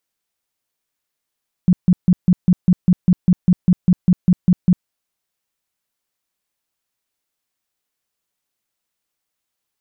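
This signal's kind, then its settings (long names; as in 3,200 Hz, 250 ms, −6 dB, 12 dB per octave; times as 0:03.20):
tone bursts 180 Hz, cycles 9, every 0.20 s, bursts 16, −7.5 dBFS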